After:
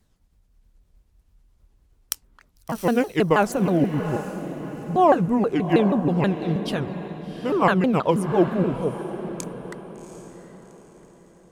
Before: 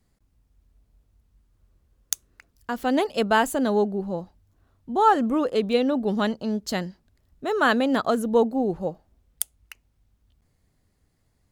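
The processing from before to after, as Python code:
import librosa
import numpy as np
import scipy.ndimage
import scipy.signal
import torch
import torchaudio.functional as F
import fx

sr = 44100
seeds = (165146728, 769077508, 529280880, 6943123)

y = fx.pitch_ramps(x, sr, semitones=-7.5, every_ms=160)
y = fx.dynamic_eq(y, sr, hz=5400.0, q=0.76, threshold_db=-48.0, ratio=4.0, max_db=-7)
y = fx.echo_diffused(y, sr, ms=752, feedback_pct=40, wet_db=-11.0)
y = F.gain(torch.from_numpy(y), 3.5).numpy()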